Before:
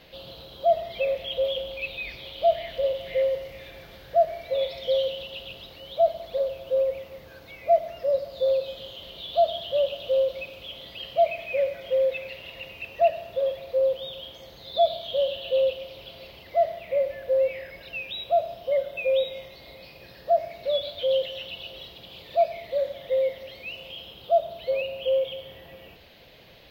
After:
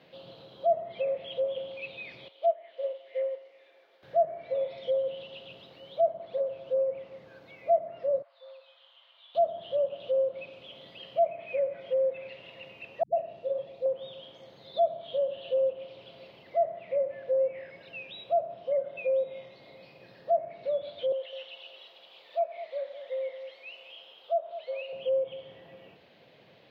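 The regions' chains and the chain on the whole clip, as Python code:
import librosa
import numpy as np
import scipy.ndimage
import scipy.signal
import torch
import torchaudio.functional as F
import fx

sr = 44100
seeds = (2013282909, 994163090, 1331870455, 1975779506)

y = fx.chain(x, sr, fx.highpass(hz=380.0, slope=24),
    fx.upward_expand(threshold_db=-35.0, expansion=1.5), at=(2.28, 4.03))
y = fx.chain(y, sr, fx.highpass(hz=1000.0, slope=24),
    fx.spacing_loss(db_at_10k=25), at=(8.22, 9.35))
y = fx.chain(y, sr, fx.peak_eq(hz=1600.0, db=-8.5, octaves=1.7),
    fx.dispersion(late='highs', ms=122.0, hz=360.0),
    fx.room_flutter(wall_m=4.9, rt60_s=0.22), at=(13.03, 13.86))
y = fx.chain(y, sr, fx.highpass(hz=690.0, slope=12),
    fx.echo_single(ms=207, db=-11.0), at=(21.12, 24.93))
y = fx.lowpass(y, sr, hz=1900.0, slope=6)
y = fx.env_lowpass_down(y, sr, base_hz=1300.0, full_db=-21.0)
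y = scipy.signal.sosfilt(scipy.signal.butter(4, 120.0, 'highpass', fs=sr, output='sos'), y)
y = y * 10.0 ** (-3.5 / 20.0)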